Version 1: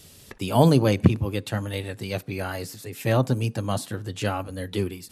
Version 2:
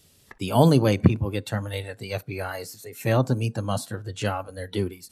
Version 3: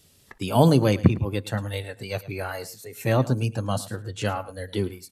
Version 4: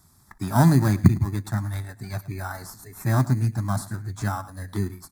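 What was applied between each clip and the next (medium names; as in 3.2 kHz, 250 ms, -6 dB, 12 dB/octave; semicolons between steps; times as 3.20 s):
spectral noise reduction 9 dB
delay 109 ms -17.5 dB
in parallel at -5.5 dB: sample-and-hold 20×; on the sum: static phaser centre 1.2 kHz, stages 4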